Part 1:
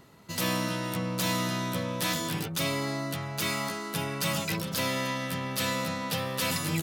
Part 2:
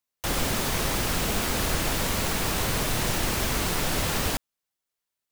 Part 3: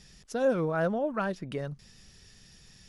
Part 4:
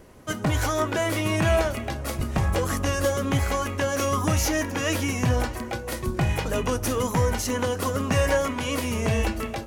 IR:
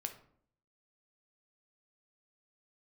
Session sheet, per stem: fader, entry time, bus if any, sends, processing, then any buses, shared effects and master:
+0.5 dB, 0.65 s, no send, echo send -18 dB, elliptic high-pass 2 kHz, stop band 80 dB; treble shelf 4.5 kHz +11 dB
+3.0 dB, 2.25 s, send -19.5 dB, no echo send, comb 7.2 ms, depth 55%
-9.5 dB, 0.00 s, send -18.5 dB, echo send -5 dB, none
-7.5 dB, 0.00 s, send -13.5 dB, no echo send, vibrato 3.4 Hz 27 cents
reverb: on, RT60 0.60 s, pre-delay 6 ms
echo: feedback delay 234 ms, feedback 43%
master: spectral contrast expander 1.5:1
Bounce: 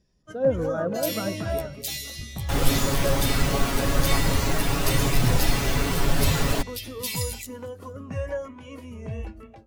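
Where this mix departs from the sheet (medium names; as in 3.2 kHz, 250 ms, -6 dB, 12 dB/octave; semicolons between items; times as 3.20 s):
stem 3 -9.5 dB -> -0.5 dB; stem 4: send off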